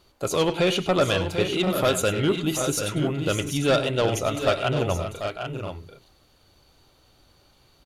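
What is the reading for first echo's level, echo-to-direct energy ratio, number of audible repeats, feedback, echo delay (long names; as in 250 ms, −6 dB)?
−13.5 dB, −5.0 dB, 3, repeats not evenly spaced, 101 ms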